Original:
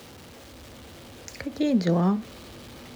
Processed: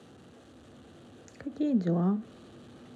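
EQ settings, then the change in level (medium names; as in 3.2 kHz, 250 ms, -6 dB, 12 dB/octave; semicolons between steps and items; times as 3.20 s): treble shelf 2.1 kHz -10 dB; dynamic bell 4.4 kHz, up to -3 dB, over -51 dBFS, Q 0.82; cabinet simulation 120–9800 Hz, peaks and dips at 550 Hz -5 dB, 950 Hz -8 dB, 2.2 kHz -9 dB, 5.1 kHz -8 dB; -3.5 dB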